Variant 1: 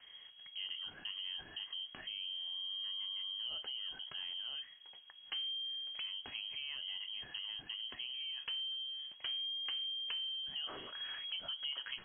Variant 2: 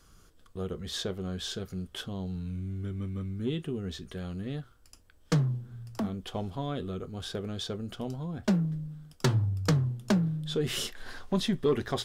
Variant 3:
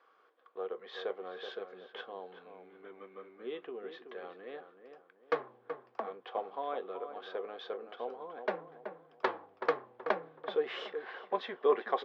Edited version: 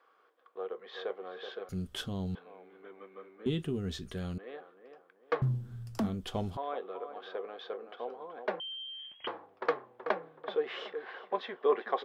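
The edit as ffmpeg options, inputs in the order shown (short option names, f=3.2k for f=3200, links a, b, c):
-filter_complex "[1:a]asplit=3[a][b][c];[2:a]asplit=5[d][e][f][g][h];[d]atrim=end=1.692[i];[a]atrim=start=1.688:end=2.352[j];[e]atrim=start=2.348:end=3.462[k];[b]atrim=start=3.458:end=4.382[l];[f]atrim=start=4.378:end=5.422[m];[c]atrim=start=5.418:end=6.572[n];[g]atrim=start=6.568:end=8.602[o];[0:a]atrim=start=8.598:end=9.272[p];[h]atrim=start=9.268[q];[i][j]acrossfade=d=0.004:c1=hsin:c2=hsin[r];[r][k]acrossfade=d=0.004:c1=hsin:c2=hsin[s];[s][l]acrossfade=d=0.004:c1=hsin:c2=hsin[t];[t][m]acrossfade=d=0.004:c1=hsin:c2=hsin[u];[u][n]acrossfade=d=0.004:c1=hsin:c2=hsin[v];[v][o]acrossfade=d=0.004:c1=hsin:c2=hsin[w];[w][p]acrossfade=d=0.004:c1=hsin:c2=hsin[x];[x][q]acrossfade=d=0.004:c1=hsin:c2=hsin"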